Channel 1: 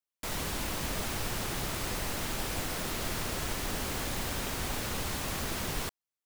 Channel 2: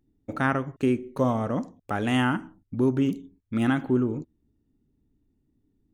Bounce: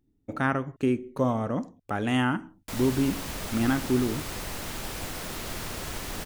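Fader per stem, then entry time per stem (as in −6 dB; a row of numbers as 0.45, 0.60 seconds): −1.0, −1.5 decibels; 2.45, 0.00 seconds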